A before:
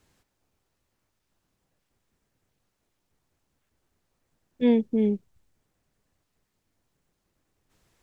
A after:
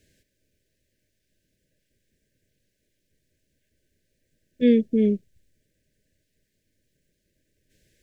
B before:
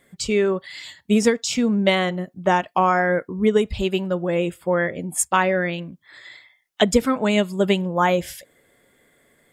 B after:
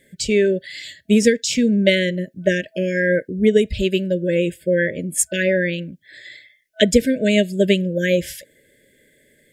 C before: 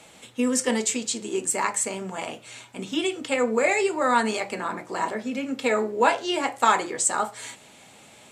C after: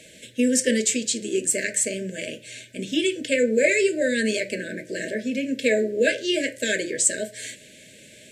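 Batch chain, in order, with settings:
brick-wall band-stop 650–1,500 Hz
level +3 dB

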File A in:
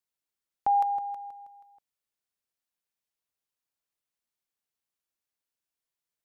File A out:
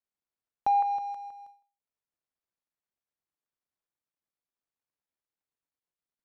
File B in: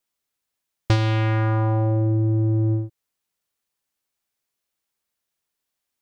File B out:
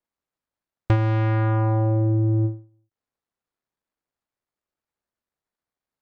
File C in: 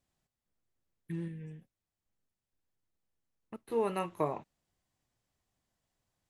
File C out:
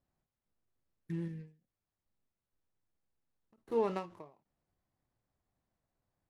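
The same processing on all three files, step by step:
running median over 15 samples
treble cut that deepens with the level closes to 2,300 Hz, closed at −19.5 dBFS
every ending faded ahead of time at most 160 dB per second

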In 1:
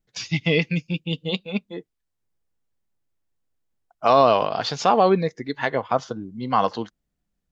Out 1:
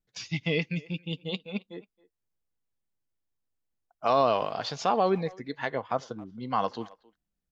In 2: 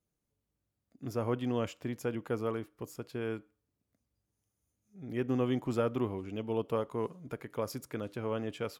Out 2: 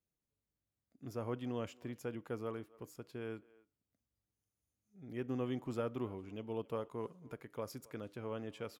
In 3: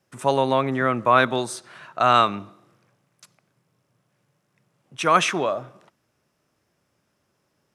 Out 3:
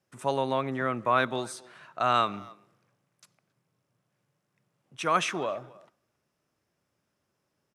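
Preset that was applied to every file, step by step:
far-end echo of a speakerphone 270 ms, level −22 dB
level −7.5 dB

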